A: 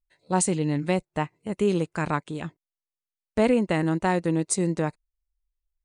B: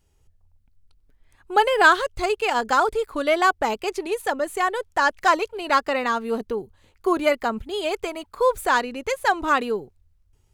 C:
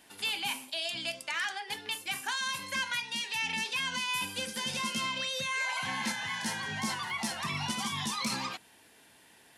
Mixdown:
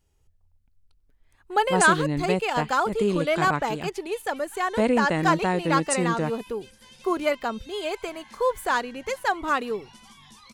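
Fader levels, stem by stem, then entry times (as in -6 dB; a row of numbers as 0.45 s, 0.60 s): -1.0 dB, -4.0 dB, -16.5 dB; 1.40 s, 0.00 s, 2.25 s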